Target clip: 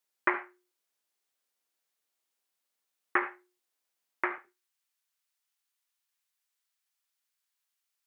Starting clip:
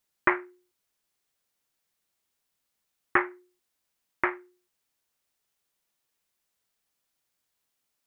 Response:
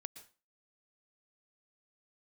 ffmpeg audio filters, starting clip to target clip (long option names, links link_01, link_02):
-filter_complex "[0:a]asetnsamples=nb_out_samples=441:pad=0,asendcmd='4.38 highpass f 1100',highpass=300[link_01];[1:a]atrim=start_sample=2205,asetrate=79380,aresample=44100[link_02];[link_01][link_02]afir=irnorm=-1:irlink=0,volume=6dB"